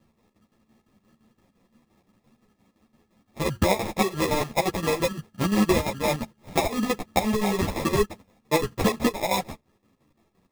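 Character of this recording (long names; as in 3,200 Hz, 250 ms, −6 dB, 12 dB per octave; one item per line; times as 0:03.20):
chopped level 5.8 Hz, depth 65%, duty 65%
aliases and images of a low sample rate 1,500 Hz, jitter 0%
a shimmering, thickened sound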